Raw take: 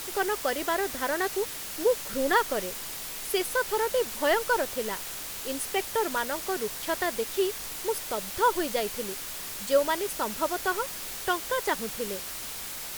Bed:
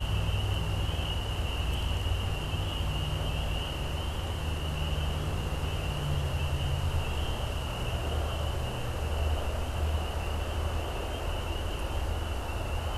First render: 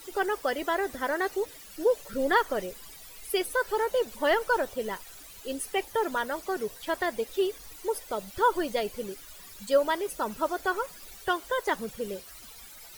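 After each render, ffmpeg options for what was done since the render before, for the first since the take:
-af "afftdn=nr=15:nf=-38"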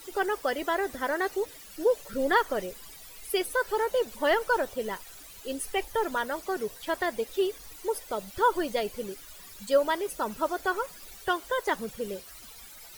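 -filter_complex "[0:a]asplit=3[a][b][c];[a]afade=t=out:st=5.62:d=0.02[d];[b]asubboost=boost=3.5:cutoff=74,afade=t=in:st=5.62:d=0.02,afade=t=out:st=6.1:d=0.02[e];[c]afade=t=in:st=6.1:d=0.02[f];[d][e][f]amix=inputs=3:normalize=0"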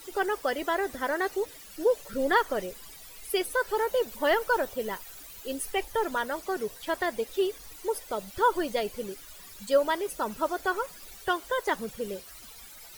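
-filter_complex "[0:a]asettb=1/sr,asplit=3[a][b][c];[a]atrim=end=3.764[d];[b]atrim=start=3.76:end=5.71,asetpts=PTS-STARTPTS,afade=t=in:d=0.004:c=qsin,afade=t=out:st=1.946:d=0.004:c=qsin,equalizer=f=15k:w=2.6:g=8.5[e];[c]atrim=start=5.706[f];[d][e]acrossfade=d=0.004:c1=hsin:c2=qsin[g];[g][f]acrossfade=d=0.004:c1=qsin:c2=hsin"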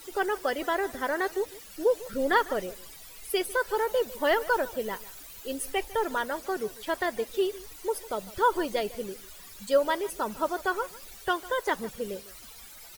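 -filter_complex "[0:a]asplit=2[a][b];[b]adelay=151.6,volume=-19dB,highshelf=f=4k:g=-3.41[c];[a][c]amix=inputs=2:normalize=0"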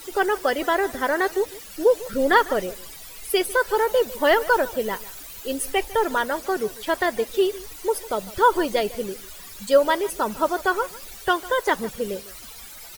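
-af "volume=6.5dB"

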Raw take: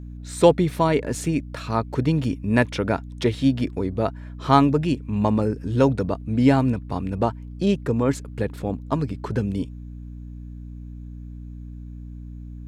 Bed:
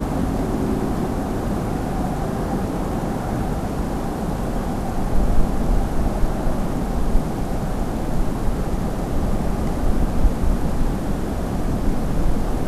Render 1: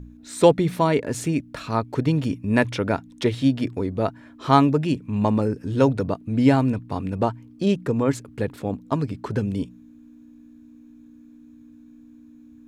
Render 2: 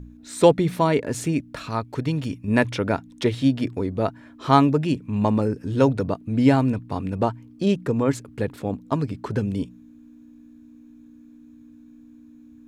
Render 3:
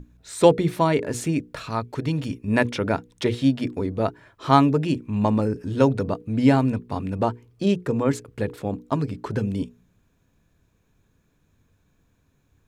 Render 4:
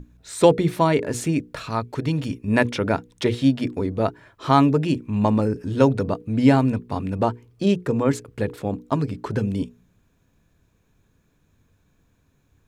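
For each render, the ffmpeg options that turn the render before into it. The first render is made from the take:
-af "bandreject=f=60:t=h:w=4,bandreject=f=120:t=h:w=4,bandreject=f=180:t=h:w=4"
-filter_complex "[0:a]asettb=1/sr,asplit=3[a][b][c];[a]atrim=end=1.694[d];[b]atrim=start=1.69:end=2.48,asetpts=PTS-STARTPTS,afade=t=in:d=0.004:c=qsin,afade=t=out:st=0.786:d=0.004:c=qsin,equalizer=f=350:w=0.34:g=-4.5[e];[c]atrim=start=2.476[f];[d][e]acrossfade=d=0.004:c1=hsin:c2=qsin[g];[g][f]acrossfade=d=0.004:c1=qsin:c2=hsin"
-af "bandreject=f=60:t=h:w=6,bandreject=f=120:t=h:w=6,bandreject=f=180:t=h:w=6,bandreject=f=240:t=h:w=6,bandreject=f=300:t=h:w=6,bandreject=f=360:t=h:w=6,bandreject=f=420:t=h:w=6,bandreject=f=480:t=h:w=6"
-af "volume=1.5dB,alimiter=limit=-3dB:level=0:latency=1"

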